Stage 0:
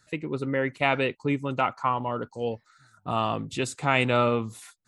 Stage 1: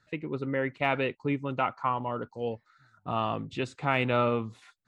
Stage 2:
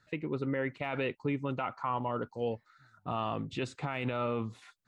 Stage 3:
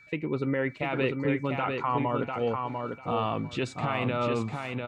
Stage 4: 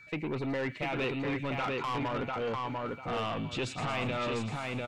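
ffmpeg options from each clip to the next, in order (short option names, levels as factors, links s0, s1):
-af "lowpass=3600,deesser=0.7,volume=0.708"
-af "alimiter=limit=0.075:level=0:latency=1:release=44"
-af "aecho=1:1:697|1394|2091:0.596|0.107|0.0193,aeval=exprs='val(0)+0.00141*sin(2*PI*2300*n/s)':c=same,volume=1.68"
-filter_complex "[0:a]acrossover=split=2500[s0][s1];[s0]asoftclip=type=tanh:threshold=0.0266[s2];[s1]aecho=1:1:115|230|345|460|575|690|805:0.398|0.235|0.139|0.0818|0.0482|0.0285|0.0168[s3];[s2][s3]amix=inputs=2:normalize=0,volume=1.19"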